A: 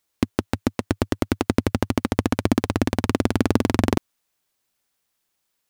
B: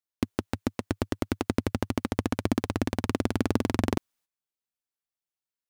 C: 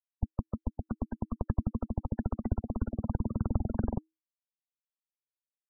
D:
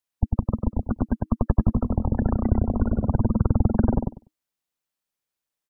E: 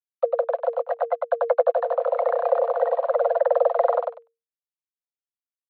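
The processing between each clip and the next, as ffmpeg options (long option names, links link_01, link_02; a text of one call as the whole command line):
ffmpeg -i in.wav -af "agate=range=-14dB:threshold=-54dB:ratio=16:detection=peak,volume=-6.5dB" out.wav
ffmpeg -i in.wav -af "afftfilt=real='re*gte(hypot(re,im),0.0501)':imag='im*gte(hypot(re,im),0.0501)':win_size=1024:overlap=0.75,afreqshift=-320,volume=-3dB" out.wav
ffmpeg -i in.wav -filter_complex "[0:a]asplit=2[link_01][link_02];[link_02]adelay=98,lowpass=frequency=1500:poles=1,volume=-3dB,asplit=2[link_03][link_04];[link_04]adelay=98,lowpass=frequency=1500:poles=1,volume=0.17,asplit=2[link_05][link_06];[link_06]adelay=98,lowpass=frequency=1500:poles=1,volume=0.17[link_07];[link_01][link_03][link_05][link_07]amix=inputs=4:normalize=0,volume=9dB" out.wav
ffmpeg -i in.wav -af "aresample=8000,aeval=exprs='sgn(val(0))*max(abs(val(0))-0.00473,0)':channel_layout=same,aresample=44100,afreqshift=460" out.wav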